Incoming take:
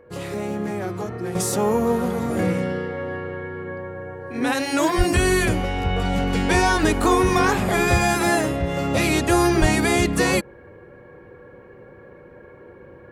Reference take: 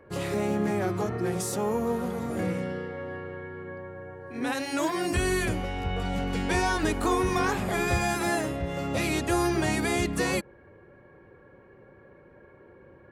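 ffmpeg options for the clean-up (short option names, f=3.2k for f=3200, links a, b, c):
-filter_complex "[0:a]bandreject=f=490:w=30,asplit=3[a][b][c];[a]afade=t=out:st=4.97:d=0.02[d];[b]highpass=f=140:w=0.5412,highpass=f=140:w=1.3066,afade=t=in:st=4.97:d=0.02,afade=t=out:st=5.09:d=0.02[e];[c]afade=t=in:st=5.09:d=0.02[f];[d][e][f]amix=inputs=3:normalize=0,asplit=3[g][h][i];[g]afade=t=out:st=9.6:d=0.02[j];[h]highpass=f=140:w=0.5412,highpass=f=140:w=1.3066,afade=t=in:st=9.6:d=0.02,afade=t=out:st=9.72:d=0.02[k];[i]afade=t=in:st=9.72:d=0.02[l];[j][k][l]amix=inputs=3:normalize=0,asetnsamples=n=441:p=0,asendcmd='1.35 volume volume -7.5dB',volume=0dB"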